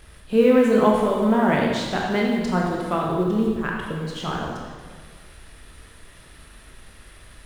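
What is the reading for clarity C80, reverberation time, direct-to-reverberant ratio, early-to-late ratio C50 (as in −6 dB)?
2.5 dB, 1.6 s, −2.5 dB, 0.5 dB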